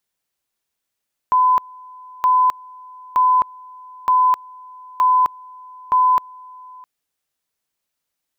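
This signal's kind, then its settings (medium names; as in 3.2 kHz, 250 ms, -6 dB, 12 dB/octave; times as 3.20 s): two-level tone 1.01 kHz -11 dBFS, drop 25.5 dB, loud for 0.26 s, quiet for 0.66 s, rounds 6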